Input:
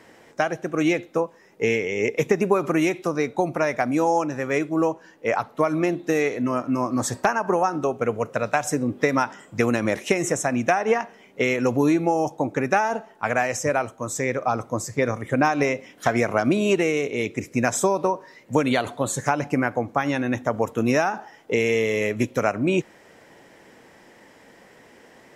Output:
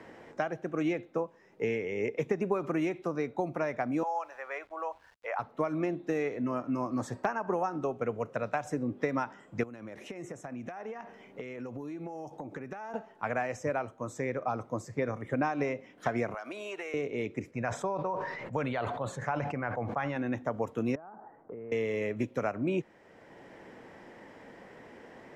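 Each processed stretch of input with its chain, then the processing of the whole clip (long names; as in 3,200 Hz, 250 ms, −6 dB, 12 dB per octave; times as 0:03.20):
0:04.03–0:05.39: high-pass filter 670 Hz 24 dB per octave + high-shelf EQ 3,800 Hz −9.5 dB + centre clipping without the shift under −52 dBFS
0:09.63–0:12.94: high-shelf EQ 9,100 Hz +4.5 dB + downward compressor 12 to 1, threshold −32 dBFS
0:16.34–0:16.94: high-pass filter 790 Hz + high-shelf EQ 8,200 Hz +9.5 dB + downward compressor 3 to 1, threshold −28 dBFS
0:17.51–0:20.16: low-pass filter 2,500 Hz 6 dB per octave + parametric band 290 Hz −10.5 dB 1.2 octaves + level that may fall only so fast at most 35 dB per second
0:20.95–0:21.72: one scale factor per block 5 bits + low-pass filter 1,300 Hz 24 dB per octave + downward compressor 5 to 1, threshold −38 dBFS
whole clip: low-pass filter 1,900 Hz 6 dB per octave; multiband upward and downward compressor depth 40%; level −8.5 dB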